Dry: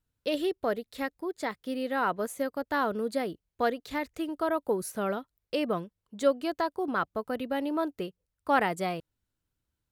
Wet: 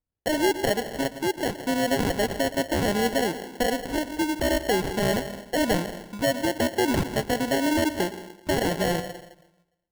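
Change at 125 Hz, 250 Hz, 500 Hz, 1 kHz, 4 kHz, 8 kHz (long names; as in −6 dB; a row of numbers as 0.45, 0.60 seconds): +13.0, +7.0, +5.0, +2.0, +11.5, +13.5 decibels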